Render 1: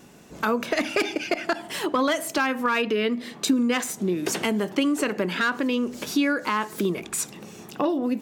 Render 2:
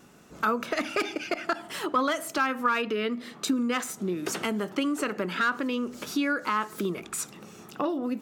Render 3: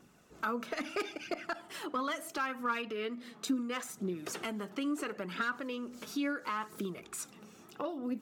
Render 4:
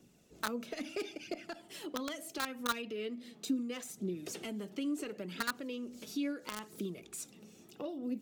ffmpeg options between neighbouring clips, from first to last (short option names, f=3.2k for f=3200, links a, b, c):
-af "equalizer=f=1.3k:w=4.9:g=9,volume=-5dB"
-af "aphaser=in_gain=1:out_gain=1:delay=4.8:decay=0.38:speed=0.74:type=triangular,volume=-9dB"
-filter_complex "[0:a]acrossover=split=120|750|2000[a][b][c][d];[c]acrusher=bits=4:mix=0:aa=0.000001[e];[d]asoftclip=type=tanh:threshold=-33dB[f];[a][b][e][f]amix=inputs=4:normalize=0,volume=-1dB"